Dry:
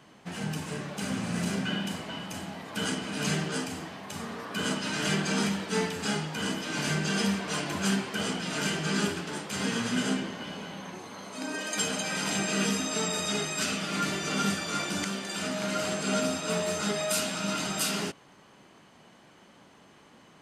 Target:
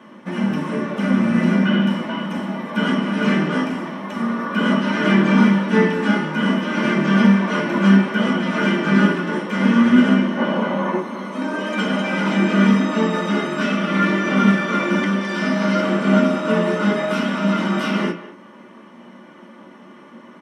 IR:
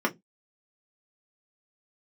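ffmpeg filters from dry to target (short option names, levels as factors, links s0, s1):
-filter_complex "[0:a]asettb=1/sr,asplit=3[s0][s1][s2];[s0]atrim=end=10.374[s3];[s1]atrim=start=10.37:end=11,asetpts=PTS-STARTPTS,afade=t=in:d=0.004:c=qsin,afade=t=out:st=0.626:d=0.004:c=qsin,equalizer=f=650:w=0.44:g=9.5[s4];[s2]atrim=start=10.996[s5];[s3][s4]acrossfade=d=0.004:c1=hsin:c2=qsin[s6];[s6][s5]acrossfade=d=0.004:c1=qsin:c2=hsin[s7];[1:a]atrim=start_sample=2205[s8];[s7][s8]afir=irnorm=-1:irlink=0,acrossover=split=4900[s9][s10];[s10]acompressor=threshold=0.00282:ratio=4:attack=1:release=60[s11];[s9][s11]amix=inputs=2:normalize=0,asettb=1/sr,asplit=3[s12][s13][s14];[s12]atrim=end=15.214[s15];[s13]atrim=start=15.21:end=15.81,asetpts=PTS-STARTPTS,afade=t=in:d=0.004:c=qsin,afade=t=out:st=0.596:d=0.004:c=qsin,equalizer=f=5000:w=2.7:g=9.5[s16];[s14]atrim=start=15.806[s17];[s15][s16]acrossfade=d=0.004:c1=hsin:c2=qsin[s18];[s18][s17]acrossfade=d=0.004:c1=qsin:c2=hsin,asplit=2[s19][s20];[s20]adelay=200,highpass=300,lowpass=3400,asoftclip=type=hard:threshold=0.355,volume=0.2[s21];[s19][s21]amix=inputs=2:normalize=0,volume=0.891"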